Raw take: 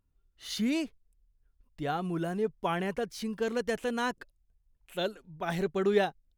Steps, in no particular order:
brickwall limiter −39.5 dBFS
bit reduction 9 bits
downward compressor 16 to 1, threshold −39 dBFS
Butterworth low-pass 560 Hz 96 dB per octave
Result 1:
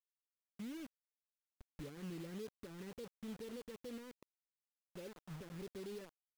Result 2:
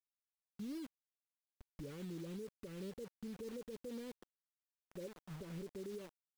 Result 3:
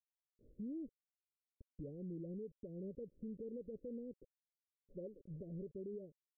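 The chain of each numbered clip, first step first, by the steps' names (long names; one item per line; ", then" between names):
downward compressor, then brickwall limiter, then Butterworth low-pass, then bit reduction
downward compressor, then Butterworth low-pass, then bit reduction, then brickwall limiter
bit reduction, then downward compressor, then Butterworth low-pass, then brickwall limiter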